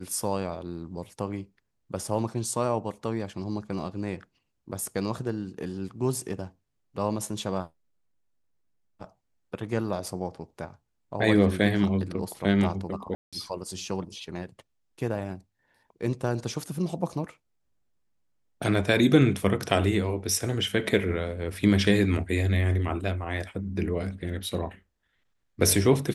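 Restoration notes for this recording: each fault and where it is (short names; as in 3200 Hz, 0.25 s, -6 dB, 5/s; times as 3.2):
13.15–13.33 gap 0.176 s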